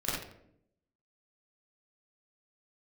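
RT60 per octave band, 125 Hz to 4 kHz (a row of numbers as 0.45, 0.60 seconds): 0.95, 1.0, 0.85, 0.60, 0.55, 0.45 seconds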